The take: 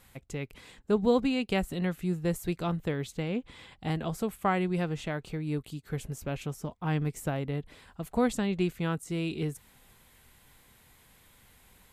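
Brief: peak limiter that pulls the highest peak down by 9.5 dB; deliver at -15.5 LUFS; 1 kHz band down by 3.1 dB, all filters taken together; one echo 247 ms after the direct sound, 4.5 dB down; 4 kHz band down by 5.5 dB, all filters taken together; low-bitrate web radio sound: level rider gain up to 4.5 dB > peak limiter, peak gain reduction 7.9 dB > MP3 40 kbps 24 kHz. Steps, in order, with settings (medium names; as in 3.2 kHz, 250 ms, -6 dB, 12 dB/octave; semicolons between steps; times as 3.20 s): peaking EQ 1 kHz -4 dB; peaking EQ 4 kHz -7.5 dB; peak limiter -23 dBFS; delay 247 ms -4.5 dB; level rider gain up to 4.5 dB; peak limiter -27 dBFS; trim +22 dB; MP3 40 kbps 24 kHz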